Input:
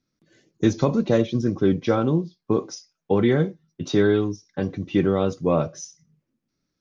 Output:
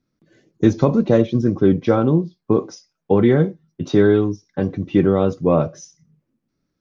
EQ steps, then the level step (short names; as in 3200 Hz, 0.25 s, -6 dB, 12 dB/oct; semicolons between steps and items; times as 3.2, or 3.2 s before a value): high shelf 2300 Hz -9.5 dB; +5.0 dB